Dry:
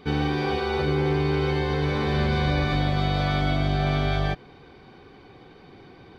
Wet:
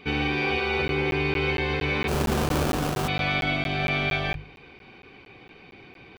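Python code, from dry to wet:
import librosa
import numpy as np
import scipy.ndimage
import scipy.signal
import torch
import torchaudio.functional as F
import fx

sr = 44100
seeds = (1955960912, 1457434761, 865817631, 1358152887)

y = fx.peak_eq(x, sr, hz=2500.0, db=15.0, octaves=0.52)
y = fx.hum_notches(y, sr, base_hz=50, count=3)
y = fx.sample_hold(y, sr, seeds[0], rate_hz=2000.0, jitter_pct=20, at=(2.07, 3.07), fade=0.02)
y = fx.buffer_crackle(y, sr, first_s=0.88, period_s=0.23, block=512, kind='zero')
y = y * librosa.db_to_amplitude(-2.0)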